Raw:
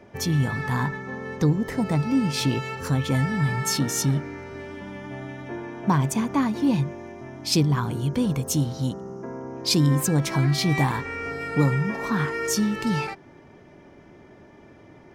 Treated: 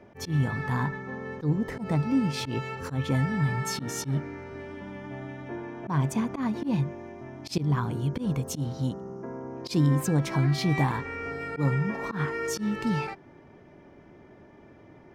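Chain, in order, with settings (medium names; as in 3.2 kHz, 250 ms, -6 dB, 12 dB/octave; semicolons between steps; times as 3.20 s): treble shelf 3.7 kHz -8 dB; slow attack 103 ms; trim -2.5 dB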